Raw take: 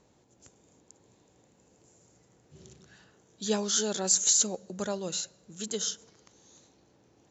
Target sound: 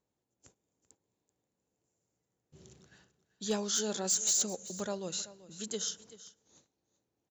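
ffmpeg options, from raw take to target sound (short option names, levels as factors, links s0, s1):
-af "agate=range=0.141:threshold=0.00141:ratio=16:detection=peak,volume=9.44,asoftclip=hard,volume=0.106,aecho=1:1:385:0.141,volume=0.631"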